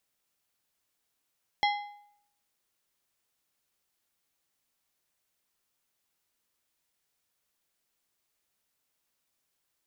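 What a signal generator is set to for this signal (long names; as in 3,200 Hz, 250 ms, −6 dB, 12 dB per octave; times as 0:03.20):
struck metal plate, lowest mode 823 Hz, decay 0.70 s, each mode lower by 4 dB, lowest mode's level −22 dB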